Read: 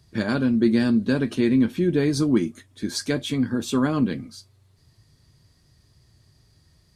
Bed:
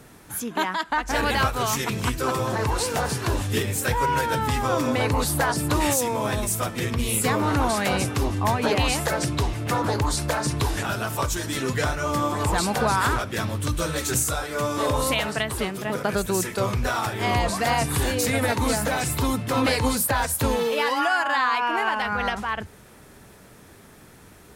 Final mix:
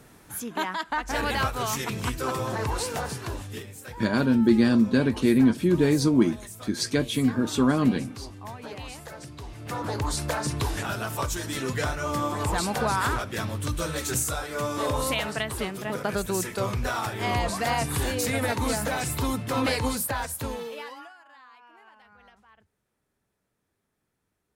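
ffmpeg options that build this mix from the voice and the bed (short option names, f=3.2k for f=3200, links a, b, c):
-filter_complex "[0:a]adelay=3850,volume=0dB[a];[1:a]volume=9.5dB,afade=t=out:st=2.78:d=0.94:silence=0.223872,afade=t=in:st=9.41:d=0.75:silence=0.211349,afade=t=out:st=19.73:d=1.41:silence=0.0473151[b];[a][b]amix=inputs=2:normalize=0"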